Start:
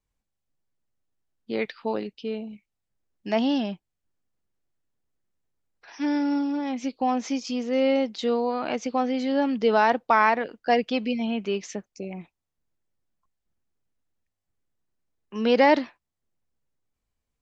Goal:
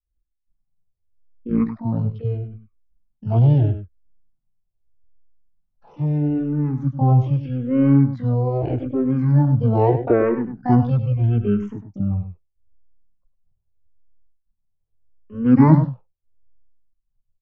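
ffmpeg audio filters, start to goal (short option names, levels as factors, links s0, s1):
-filter_complex "[0:a]aemphasis=mode=reproduction:type=riaa,agate=range=0.0224:threshold=0.00224:ratio=3:detection=peak,highshelf=f=2300:g=-11,asetrate=22696,aresample=44100,atempo=1.94306,tremolo=f=1.4:d=0.41,asplit=2[s0][s1];[s1]asetrate=88200,aresample=44100,atempo=0.5,volume=0.447[s2];[s0][s2]amix=inputs=2:normalize=0,asplit=2[s3][s4];[s4]aecho=0:1:101:0.299[s5];[s3][s5]amix=inputs=2:normalize=0,asplit=2[s6][s7];[s7]afreqshift=-0.79[s8];[s6][s8]amix=inputs=2:normalize=1,volume=2.11"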